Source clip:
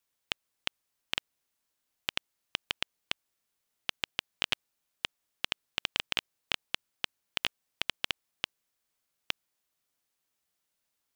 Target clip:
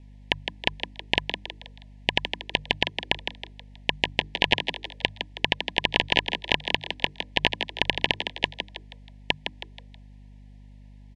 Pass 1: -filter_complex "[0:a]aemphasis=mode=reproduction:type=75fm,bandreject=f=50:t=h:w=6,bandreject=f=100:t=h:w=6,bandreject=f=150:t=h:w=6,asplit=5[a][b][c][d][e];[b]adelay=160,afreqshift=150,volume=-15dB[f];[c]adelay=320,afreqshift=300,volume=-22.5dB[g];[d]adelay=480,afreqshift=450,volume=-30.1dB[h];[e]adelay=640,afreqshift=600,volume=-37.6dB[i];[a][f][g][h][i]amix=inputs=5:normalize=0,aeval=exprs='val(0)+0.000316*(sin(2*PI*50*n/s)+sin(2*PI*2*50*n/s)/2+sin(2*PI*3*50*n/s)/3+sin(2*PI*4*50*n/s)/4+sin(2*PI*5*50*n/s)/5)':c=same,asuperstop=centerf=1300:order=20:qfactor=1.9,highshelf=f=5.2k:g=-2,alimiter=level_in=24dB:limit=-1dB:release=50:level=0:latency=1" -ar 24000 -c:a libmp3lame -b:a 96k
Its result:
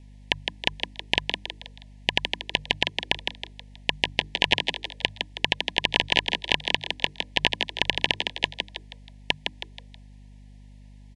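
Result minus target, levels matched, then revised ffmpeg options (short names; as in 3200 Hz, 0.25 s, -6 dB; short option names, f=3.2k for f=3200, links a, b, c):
8000 Hz band +4.5 dB
-filter_complex "[0:a]aemphasis=mode=reproduction:type=75fm,bandreject=f=50:t=h:w=6,bandreject=f=100:t=h:w=6,bandreject=f=150:t=h:w=6,asplit=5[a][b][c][d][e];[b]adelay=160,afreqshift=150,volume=-15dB[f];[c]adelay=320,afreqshift=300,volume=-22.5dB[g];[d]adelay=480,afreqshift=450,volume=-30.1dB[h];[e]adelay=640,afreqshift=600,volume=-37.6dB[i];[a][f][g][h][i]amix=inputs=5:normalize=0,aeval=exprs='val(0)+0.000316*(sin(2*PI*50*n/s)+sin(2*PI*2*50*n/s)/2+sin(2*PI*3*50*n/s)/3+sin(2*PI*4*50*n/s)/4+sin(2*PI*5*50*n/s)/5)':c=same,asuperstop=centerf=1300:order=20:qfactor=1.9,highshelf=f=5.2k:g=-13.5,alimiter=level_in=24dB:limit=-1dB:release=50:level=0:latency=1" -ar 24000 -c:a libmp3lame -b:a 96k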